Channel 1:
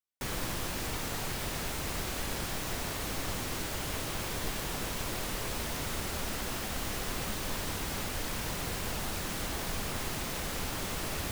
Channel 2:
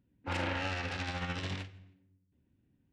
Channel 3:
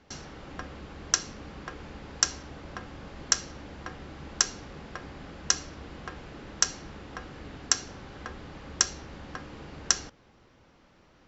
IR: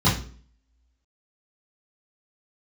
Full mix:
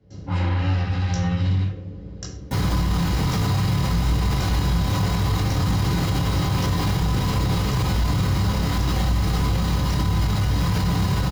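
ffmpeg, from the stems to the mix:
-filter_complex "[0:a]volume=31.5dB,asoftclip=hard,volume=-31.5dB,adelay=2300,volume=3dB,asplit=2[a][b];[b]volume=-5dB[c];[1:a]volume=-9dB,asplit=2[d][e];[e]volume=-3.5dB[f];[2:a]lowshelf=f=680:t=q:w=3:g=8,volume=-15.5dB,asplit=2[g][h];[h]volume=-12.5dB[i];[3:a]atrim=start_sample=2205[j];[c][f][i]amix=inputs=3:normalize=0[k];[k][j]afir=irnorm=-1:irlink=0[l];[a][d][g][l]amix=inputs=4:normalize=0,alimiter=limit=-13.5dB:level=0:latency=1:release=57"

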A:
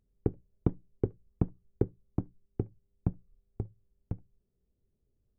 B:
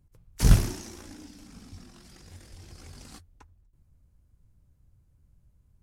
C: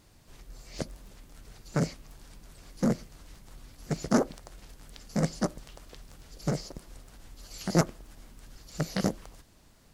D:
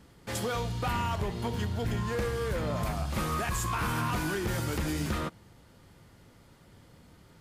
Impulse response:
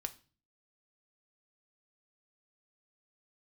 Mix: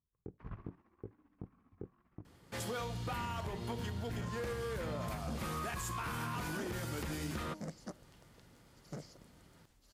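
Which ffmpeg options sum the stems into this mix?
-filter_complex "[0:a]flanger=delay=18:depth=4.4:speed=1.9,volume=-14.5dB[a];[1:a]lowpass=f=2.2k:w=0.5412,lowpass=f=2.2k:w=1.3066,equalizer=f=1.1k:t=o:w=0.33:g=14,tremolo=f=15:d=0.63,volume=-16.5dB,afade=t=in:st=0.95:d=0.53:silence=0.446684[b];[2:a]adelay=2450,volume=-16dB[c];[3:a]bandreject=f=103.2:t=h:w=4,bandreject=f=206.4:t=h:w=4,bandreject=f=309.6:t=h:w=4,bandreject=f=412.8:t=h:w=4,bandreject=f=516:t=h:w=4,bandreject=f=619.2:t=h:w=4,bandreject=f=722.4:t=h:w=4,bandreject=f=825.6:t=h:w=4,bandreject=f=928.8:t=h:w=4,bandreject=f=1.032k:t=h:w=4,adelay=2250,volume=-5dB[d];[a][b][c][d]amix=inputs=4:normalize=0,highpass=f=71:p=1,alimiter=level_in=7dB:limit=-24dB:level=0:latency=1:release=103,volume=-7dB"

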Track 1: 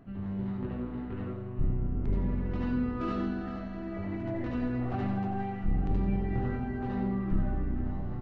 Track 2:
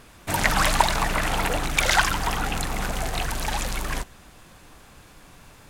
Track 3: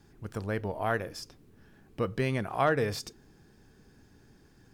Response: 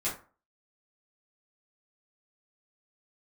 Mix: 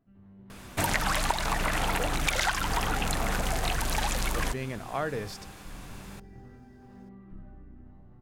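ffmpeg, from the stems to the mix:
-filter_complex "[0:a]volume=-18dB[a];[1:a]adelay=500,volume=2.5dB[b];[2:a]adelay=2350,volume=-5dB[c];[a][b][c]amix=inputs=3:normalize=0,acompressor=threshold=-24dB:ratio=6"

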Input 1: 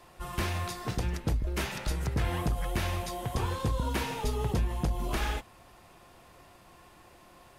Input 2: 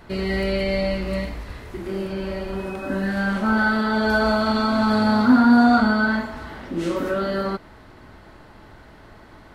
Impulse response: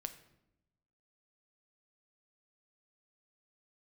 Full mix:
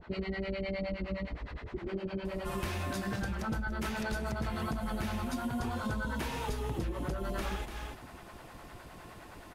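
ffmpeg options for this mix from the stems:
-filter_complex "[0:a]adelay=2250,volume=2.5dB,asplit=2[a][b];[b]volume=-13dB[c];[1:a]lowpass=3.7k,acompressor=threshold=-19dB:ratio=6,acrossover=split=530[d][e];[d]aeval=exprs='val(0)*(1-1/2+1/2*cos(2*PI*9.7*n/s))':c=same[f];[e]aeval=exprs='val(0)*(1-1/2-1/2*cos(2*PI*9.7*n/s))':c=same[g];[f][g]amix=inputs=2:normalize=0,volume=-1.5dB[h];[c]aecho=0:1:290:1[i];[a][h][i]amix=inputs=3:normalize=0,acompressor=threshold=-32dB:ratio=6"

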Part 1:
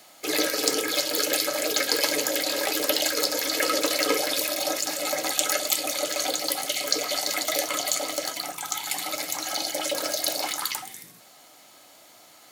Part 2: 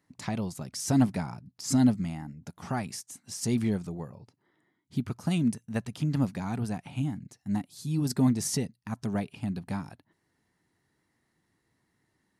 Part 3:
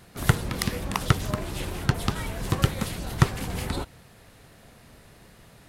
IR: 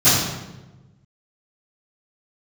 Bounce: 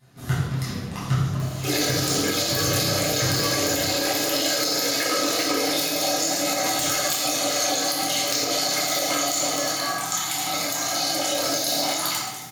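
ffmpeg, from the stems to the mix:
-filter_complex "[0:a]acompressor=mode=upward:threshold=-38dB:ratio=2.5,aeval=exprs='(mod(2.24*val(0)+1,2)-1)/2.24':c=same,adelay=1400,volume=-2.5dB,asplit=2[a][b];[b]volume=-16.5dB[c];[1:a]highpass=220,aeval=exprs='val(0)*sin(2*PI*1400*n/s)':c=same,adelay=1600,volume=-9dB,asplit=2[d][e];[e]volume=-18dB[f];[2:a]lowshelf=f=150:g=-8.5,flanger=delay=6.7:depth=8.1:regen=71:speed=1.8:shape=triangular,volume=-11.5dB,asplit=2[g][h];[h]volume=-11dB[i];[3:a]atrim=start_sample=2205[j];[c][f][i]amix=inputs=3:normalize=0[k];[k][j]afir=irnorm=-1:irlink=0[l];[a][d][g][l]amix=inputs=4:normalize=0,alimiter=limit=-12.5dB:level=0:latency=1:release=109"

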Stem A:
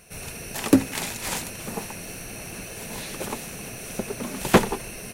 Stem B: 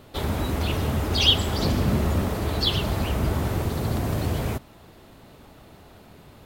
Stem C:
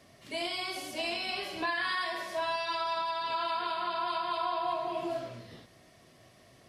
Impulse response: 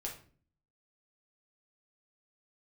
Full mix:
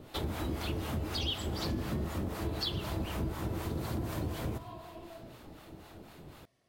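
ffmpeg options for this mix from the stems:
-filter_complex "[1:a]equalizer=f=320:t=o:w=0.23:g=6.5,acrossover=split=690[a][b];[a]aeval=exprs='val(0)*(1-0.7/2+0.7/2*cos(2*PI*4*n/s))':c=same[c];[b]aeval=exprs='val(0)*(1-0.7/2-0.7/2*cos(2*PI*4*n/s))':c=same[d];[c][d]amix=inputs=2:normalize=0,volume=-2dB,asplit=2[e][f];[f]volume=-8dB[g];[2:a]volume=-16dB[h];[3:a]atrim=start_sample=2205[i];[g][i]afir=irnorm=-1:irlink=0[j];[e][h][j]amix=inputs=3:normalize=0,acompressor=threshold=-33dB:ratio=4"

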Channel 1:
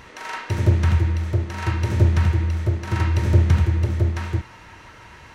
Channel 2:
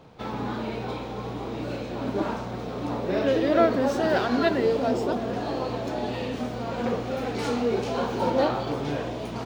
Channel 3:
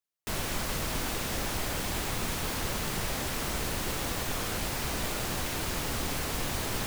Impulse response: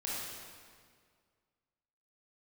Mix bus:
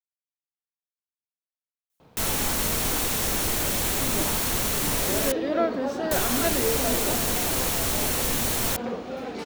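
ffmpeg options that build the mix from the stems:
-filter_complex "[1:a]bandreject=f=60:t=h:w=6,bandreject=f=120:t=h:w=6,adelay=2000,volume=-4dB[a];[2:a]highshelf=f=5.1k:g=9.5,bandreject=f=4.9k:w=17,adelay=1900,volume=3dB,asplit=3[b][c][d];[b]atrim=end=5.32,asetpts=PTS-STARTPTS,afade=t=out:st=5.316:d=0.004:c=hsin[e];[c]atrim=start=5.32:end=6.11,asetpts=PTS-STARTPTS,volume=0[f];[d]atrim=start=6.11,asetpts=PTS-STARTPTS,afade=t=in:d=0.004:c=hsin[g];[e][f][g]concat=n=3:v=0:a=1[h];[a][h]amix=inputs=2:normalize=0"

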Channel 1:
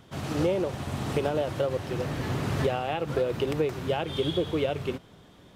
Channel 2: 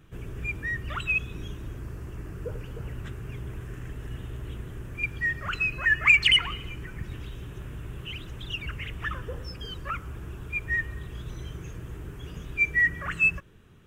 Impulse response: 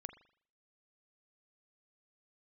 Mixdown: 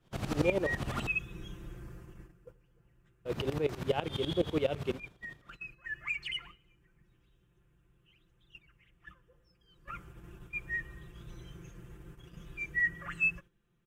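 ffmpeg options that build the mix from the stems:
-filter_complex "[0:a]aeval=exprs='val(0)*pow(10,-18*if(lt(mod(-12*n/s,1),2*abs(-12)/1000),1-mod(-12*n/s,1)/(2*abs(-12)/1000),(mod(-12*n/s,1)-2*abs(-12)/1000)/(1-2*abs(-12)/1000))/20)':c=same,volume=2dB,asplit=3[a][b][c];[a]atrim=end=1.07,asetpts=PTS-STARTPTS,afade=t=out:st=1.066:d=0.004:c=hsin[d];[b]atrim=start=1.07:end=3.25,asetpts=PTS-STARTPTS,volume=0[e];[c]atrim=start=3.25,asetpts=PTS-STARTPTS,afade=t=in:d=0.004:c=hsin[f];[d][e][f]concat=n=3:v=0:a=1[g];[1:a]aecho=1:1:5.8:0.81,volume=0.5dB,afade=t=out:st=1.8:d=0.77:silence=0.251189,afade=t=in:st=9.66:d=0.32:silence=0.334965[h];[g][h]amix=inputs=2:normalize=0,agate=range=-10dB:threshold=-49dB:ratio=16:detection=peak"

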